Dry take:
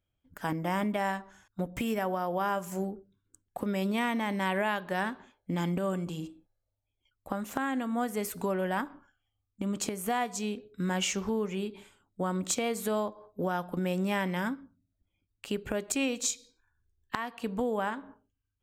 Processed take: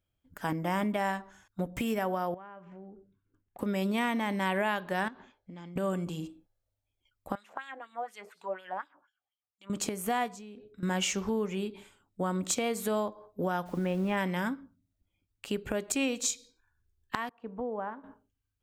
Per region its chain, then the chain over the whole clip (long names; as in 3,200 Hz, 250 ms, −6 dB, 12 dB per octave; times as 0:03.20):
0:02.34–0:03.59: low-pass filter 2,700 Hz 24 dB per octave + downward compressor 3 to 1, threshold −50 dBFS
0:05.08–0:05.76: low-pass filter 6,300 Hz 24 dB per octave + downward compressor, threshold −44 dBFS
0:07.35–0:09.70: notch filter 250 Hz, Q 6.2 + auto-filter band-pass sine 4.1 Hz 600–4,300 Hz
0:10.28–0:10.83: high-shelf EQ 4,600 Hz −9 dB + downward compressor 10 to 1, threshold −43 dBFS
0:13.65–0:14.16: low-pass filter 2,700 Hz + background noise pink −57 dBFS
0:17.29–0:18.04: low-pass filter 1,000 Hz + low-shelf EQ 490 Hz −8 dB + multiband upward and downward expander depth 40%
whole clip: no processing